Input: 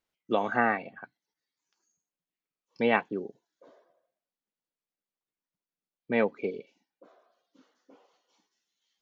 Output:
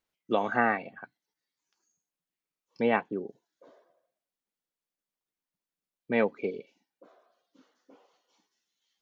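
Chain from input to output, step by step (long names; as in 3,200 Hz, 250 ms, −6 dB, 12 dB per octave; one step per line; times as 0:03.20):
0:02.81–0:03.29: high-shelf EQ 2,300 Hz −8 dB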